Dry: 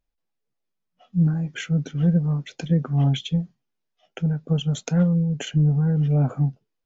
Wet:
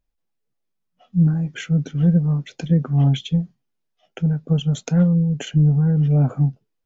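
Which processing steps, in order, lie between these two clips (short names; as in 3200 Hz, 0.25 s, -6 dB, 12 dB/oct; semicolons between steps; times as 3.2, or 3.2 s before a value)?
low shelf 350 Hz +4 dB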